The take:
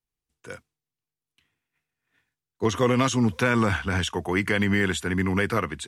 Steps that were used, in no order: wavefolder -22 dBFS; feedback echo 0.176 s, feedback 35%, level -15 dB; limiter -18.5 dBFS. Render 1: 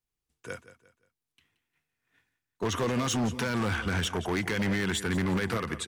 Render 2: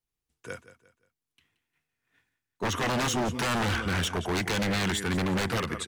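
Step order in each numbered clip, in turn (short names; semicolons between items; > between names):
limiter > feedback echo > wavefolder; feedback echo > wavefolder > limiter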